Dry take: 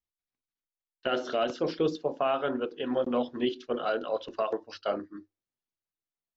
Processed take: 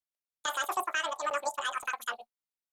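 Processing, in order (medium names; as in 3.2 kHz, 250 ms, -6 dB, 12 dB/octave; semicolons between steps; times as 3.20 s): treble shelf 4.8 kHz +10 dB; companded quantiser 8-bit; speed mistake 33 rpm record played at 78 rpm; trim -3.5 dB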